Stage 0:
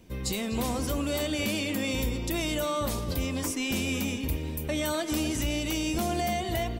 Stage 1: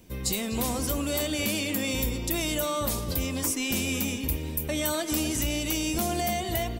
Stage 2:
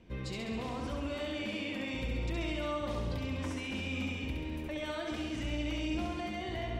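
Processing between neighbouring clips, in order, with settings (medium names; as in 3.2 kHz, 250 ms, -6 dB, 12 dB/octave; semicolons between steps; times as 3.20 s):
treble shelf 7.1 kHz +9.5 dB
Chebyshev low-pass 2.6 kHz, order 2; peak limiter -28 dBFS, peak gain reduction 8 dB; flutter echo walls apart 11.6 m, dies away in 1.1 s; trim -3 dB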